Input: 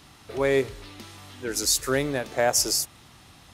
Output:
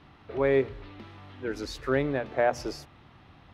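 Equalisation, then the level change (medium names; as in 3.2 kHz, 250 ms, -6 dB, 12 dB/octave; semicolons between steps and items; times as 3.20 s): distance through air 410 m; peaking EQ 6.1 kHz +4.5 dB 0.24 oct; hum notches 60/120/180/240 Hz; 0.0 dB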